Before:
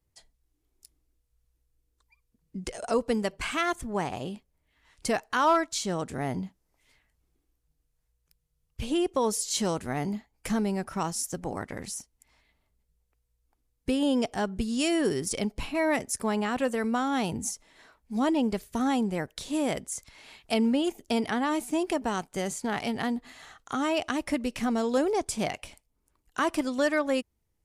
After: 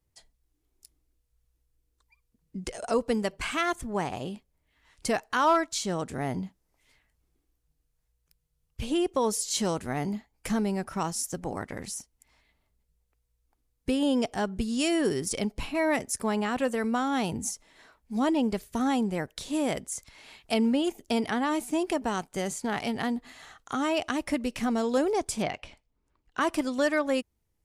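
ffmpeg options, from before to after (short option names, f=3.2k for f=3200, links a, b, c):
-filter_complex "[0:a]asettb=1/sr,asplit=3[a][b][c];[a]atrim=end=25.424[d];[b]atrim=start=25.42:end=26.41,asetpts=PTS-STARTPTS,afade=t=in:d=0.004:c=qsin,afade=t=out:st=0.986:d=0.004:c=qsin,lowpass=4.2k[e];[c]atrim=start=26.406[f];[d][e]acrossfade=d=0.004:c1=hsin:c2=qsin[g];[g][f]acrossfade=d=0.004:c1=qsin:c2=hsin"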